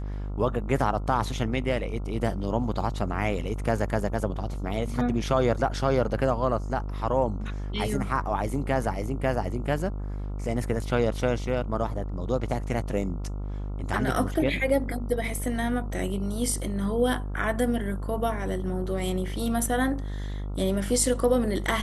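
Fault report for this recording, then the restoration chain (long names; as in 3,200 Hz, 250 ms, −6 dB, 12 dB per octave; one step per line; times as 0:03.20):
mains buzz 50 Hz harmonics 28 −32 dBFS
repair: hum removal 50 Hz, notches 28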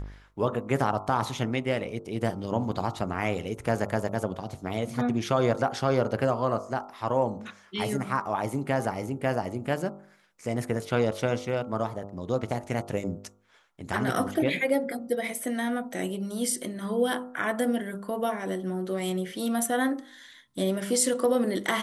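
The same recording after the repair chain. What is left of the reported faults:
none of them is left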